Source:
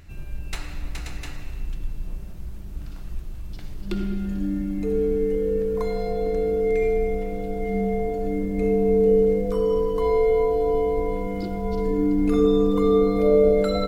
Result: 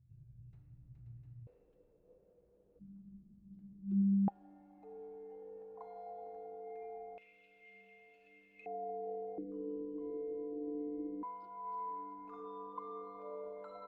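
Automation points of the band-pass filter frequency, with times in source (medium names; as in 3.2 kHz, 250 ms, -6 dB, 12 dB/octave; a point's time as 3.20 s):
band-pass filter, Q 18
120 Hz
from 1.47 s 490 Hz
from 2.79 s 200 Hz
from 4.28 s 800 Hz
from 7.18 s 2.6 kHz
from 8.66 s 740 Hz
from 9.38 s 310 Hz
from 11.23 s 1 kHz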